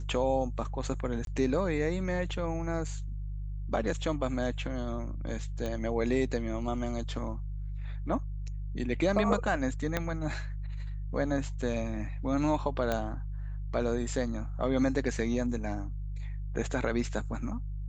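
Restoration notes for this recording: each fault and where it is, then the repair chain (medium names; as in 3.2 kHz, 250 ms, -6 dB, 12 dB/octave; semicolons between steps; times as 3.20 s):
hum 50 Hz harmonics 3 -36 dBFS
1.25–1.27 s: dropout 22 ms
5.66 s: pop -22 dBFS
9.97 s: pop -14 dBFS
12.92 s: pop -16 dBFS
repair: de-click; de-hum 50 Hz, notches 3; interpolate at 1.25 s, 22 ms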